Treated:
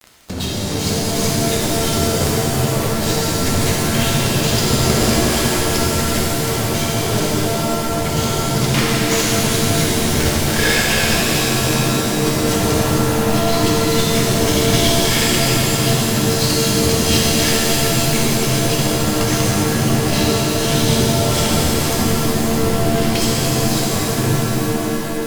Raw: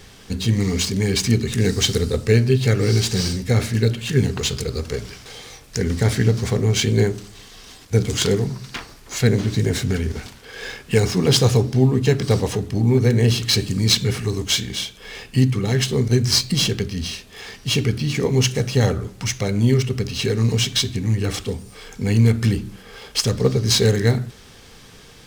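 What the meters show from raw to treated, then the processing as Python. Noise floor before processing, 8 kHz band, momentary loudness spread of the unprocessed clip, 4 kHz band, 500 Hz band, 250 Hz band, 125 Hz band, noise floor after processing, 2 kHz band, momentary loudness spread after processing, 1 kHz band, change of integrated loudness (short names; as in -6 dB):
-45 dBFS, +8.5 dB, 14 LU, +4.5 dB, +4.0 dB, +4.5 dB, -0.5 dB, -20 dBFS, +8.5 dB, 4 LU, +14.0 dB, +3.5 dB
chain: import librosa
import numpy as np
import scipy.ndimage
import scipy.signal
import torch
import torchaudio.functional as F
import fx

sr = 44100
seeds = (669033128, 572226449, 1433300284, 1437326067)

y = fx.fuzz(x, sr, gain_db=32.0, gate_db=-36.0)
y = fx.over_compress(y, sr, threshold_db=-19.0, ratio=-0.5)
y = fx.buffer_glitch(y, sr, at_s=(12.78,), block=1024, repeats=13)
y = fx.rev_shimmer(y, sr, seeds[0], rt60_s=3.9, semitones=7, shimmer_db=-2, drr_db=-5.5)
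y = y * 10.0 ** (-5.5 / 20.0)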